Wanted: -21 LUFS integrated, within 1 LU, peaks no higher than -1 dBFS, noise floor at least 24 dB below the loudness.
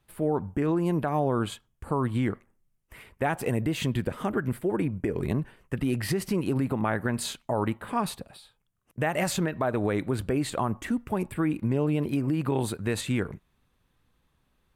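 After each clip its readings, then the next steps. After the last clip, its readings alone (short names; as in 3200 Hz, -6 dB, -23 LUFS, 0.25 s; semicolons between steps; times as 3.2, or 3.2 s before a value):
loudness -28.5 LUFS; peak -14.0 dBFS; loudness target -21.0 LUFS
-> gain +7.5 dB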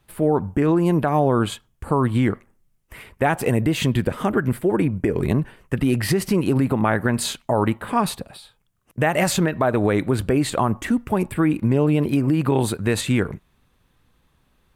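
loudness -21.0 LUFS; peak -6.5 dBFS; noise floor -65 dBFS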